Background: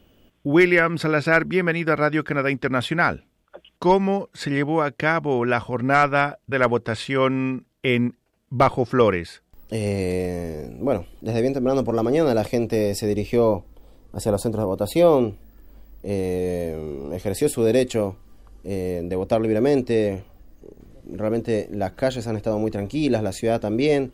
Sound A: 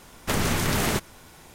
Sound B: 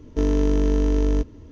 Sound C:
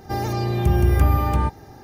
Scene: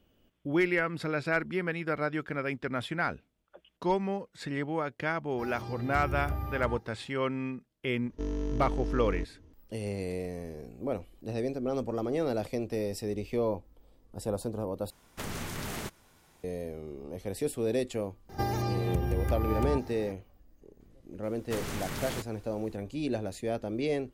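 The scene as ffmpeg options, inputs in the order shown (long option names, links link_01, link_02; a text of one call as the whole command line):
ffmpeg -i bed.wav -i cue0.wav -i cue1.wav -i cue2.wav -filter_complex "[3:a]asplit=2[link_01][link_02];[1:a]asplit=2[link_03][link_04];[0:a]volume=-11dB[link_05];[link_02]acompressor=threshold=-30dB:ratio=5:attack=89:release=111:knee=1:detection=peak[link_06];[link_05]asplit=2[link_07][link_08];[link_07]atrim=end=14.904[link_09];[link_03]atrim=end=1.54,asetpts=PTS-STARTPTS,volume=-13dB[link_10];[link_08]atrim=start=16.436[link_11];[link_01]atrim=end=1.83,asetpts=PTS-STARTPTS,volume=-17dB,afade=type=in:duration=0.004:curve=hsin,afade=type=out:start_time=1.826:duration=0.004:curve=hsin,adelay=233289S[link_12];[2:a]atrim=end=1.51,asetpts=PTS-STARTPTS,volume=-13dB,afade=type=in:duration=0.004:curve=hsin,afade=type=out:start_time=1.506:duration=0.004:curve=hsin,adelay=353682S[link_13];[link_06]atrim=end=1.83,asetpts=PTS-STARTPTS,volume=-2.5dB,afade=type=in:duration=0.004:curve=hsin,afade=type=out:start_time=1.826:duration=0.004:curve=hsin,adelay=18290[link_14];[link_04]atrim=end=1.54,asetpts=PTS-STARTPTS,volume=-12.5dB,afade=type=in:duration=0.004:curve=hsin,afade=type=out:start_time=1.536:duration=0.004:curve=hsin,adelay=21230[link_15];[link_09][link_10]acrossfade=duration=0.004:curve1=hsin:curve2=hsin[link_16];[link_16][link_11]acrossfade=duration=0.004:curve1=hsin:curve2=hsin[link_17];[link_17][link_12][link_13][link_14][link_15]amix=inputs=5:normalize=0" out.wav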